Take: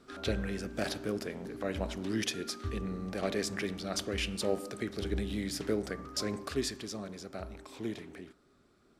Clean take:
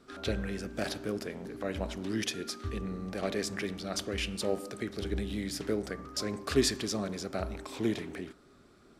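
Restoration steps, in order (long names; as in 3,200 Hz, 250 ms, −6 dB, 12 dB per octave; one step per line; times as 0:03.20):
level correction +7 dB, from 0:06.48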